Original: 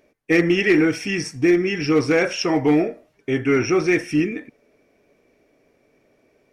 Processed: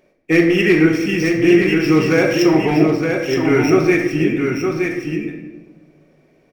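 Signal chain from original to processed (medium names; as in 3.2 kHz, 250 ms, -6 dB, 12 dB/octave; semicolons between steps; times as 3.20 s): median filter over 5 samples; delay 919 ms -5 dB; reverberation RT60 1.2 s, pre-delay 5 ms, DRR 3 dB; trim +1.5 dB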